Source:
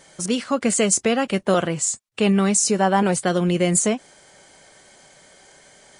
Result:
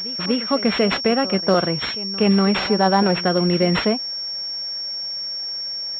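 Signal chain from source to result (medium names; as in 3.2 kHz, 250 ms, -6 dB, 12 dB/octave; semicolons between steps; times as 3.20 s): pre-echo 243 ms -17 dB; class-D stage that switches slowly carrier 5.5 kHz; trim +1.5 dB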